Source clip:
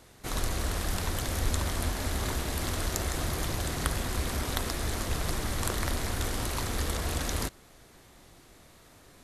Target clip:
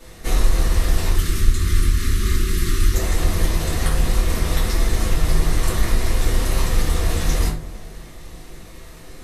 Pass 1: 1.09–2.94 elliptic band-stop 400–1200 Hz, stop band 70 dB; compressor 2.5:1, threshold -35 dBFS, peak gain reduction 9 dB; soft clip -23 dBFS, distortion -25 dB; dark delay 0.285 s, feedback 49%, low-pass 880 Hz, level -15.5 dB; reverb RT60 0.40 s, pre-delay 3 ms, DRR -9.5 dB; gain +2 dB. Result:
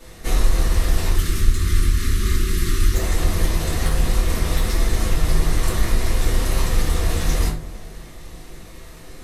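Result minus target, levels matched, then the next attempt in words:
soft clip: distortion +17 dB
1.09–2.94 elliptic band-stop 400–1200 Hz, stop band 70 dB; compressor 2.5:1, threshold -35 dBFS, peak gain reduction 9 dB; soft clip -12 dBFS, distortion -42 dB; dark delay 0.285 s, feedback 49%, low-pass 880 Hz, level -15.5 dB; reverb RT60 0.40 s, pre-delay 3 ms, DRR -9.5 dB; gain +2 dB

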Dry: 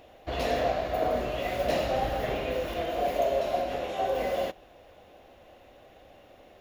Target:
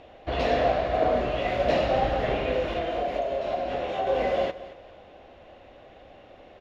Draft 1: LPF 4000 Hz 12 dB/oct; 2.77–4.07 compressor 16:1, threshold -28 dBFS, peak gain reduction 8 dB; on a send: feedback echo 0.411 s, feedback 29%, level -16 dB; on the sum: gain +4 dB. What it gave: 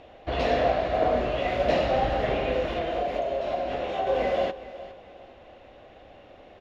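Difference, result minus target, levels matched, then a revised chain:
echo 0.186 s late
LPF 4000 Hz 12 dB/oct; 2.77–4.07 compressor 16:1, threshold -28 dBFS, peak gain reduction 8 dB; on a send: feedback echo 0.225 s, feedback 29%, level -16 dB; on the sum: gain +4 dB

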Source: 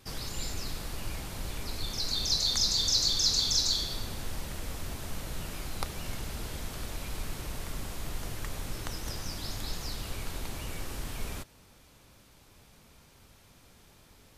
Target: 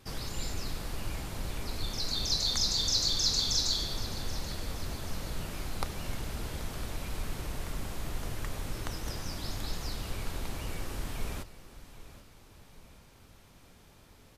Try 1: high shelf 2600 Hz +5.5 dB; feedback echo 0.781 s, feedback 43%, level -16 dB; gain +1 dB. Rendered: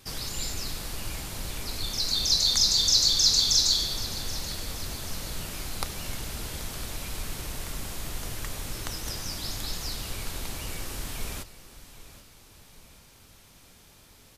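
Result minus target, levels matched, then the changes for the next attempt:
2000 Hz band -3.0 dB
change: high shelf 2600 Hz -4 dB

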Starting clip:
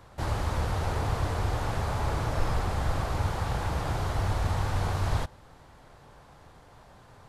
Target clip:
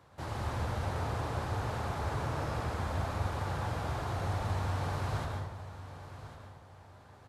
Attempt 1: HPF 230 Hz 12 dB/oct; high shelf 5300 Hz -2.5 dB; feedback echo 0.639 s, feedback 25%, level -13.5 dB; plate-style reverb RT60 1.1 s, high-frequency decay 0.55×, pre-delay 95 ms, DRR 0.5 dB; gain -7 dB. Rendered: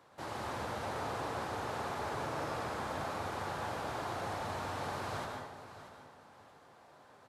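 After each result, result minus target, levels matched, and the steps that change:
125 Hz band -9.0 dB; echo 0.461 s early
change: HPF 81 Hz 12 dB/oct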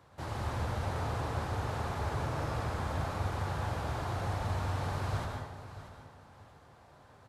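echo 0.461 s early
change: feedback echo 1.1 s, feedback 25%, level -13.5 dB

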